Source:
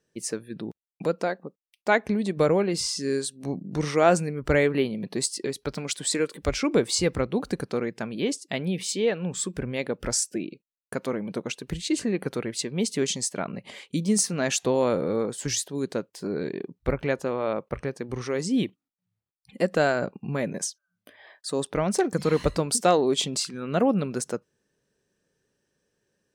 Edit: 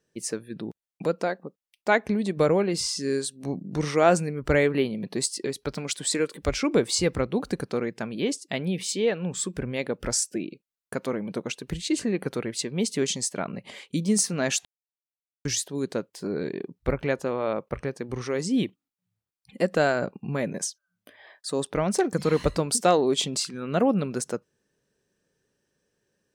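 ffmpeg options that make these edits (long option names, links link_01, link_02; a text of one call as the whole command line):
ffmpeg -i in.wav -filter_complex "[0:a]asplit=3[link_01][link_02][link_03];[link_01]atrim=end=14.65,asetpts=PTS-STARTPTS,afade=type=out:start_time=14.646:duration=0.004:curve=hsin[link_04];[link_02]atrim=start=14.65:end=15.45,asetpts=PTS-STARTPTS,volume=0[link_05];[link_03]atrim=start=15.45,asetpts=PTS-STARTPTS,afade=type=in:duration=0.004:curve=hsin[link_06];[link_04][link_05][link_06]concat=n=3:v=0:a=1" out.wav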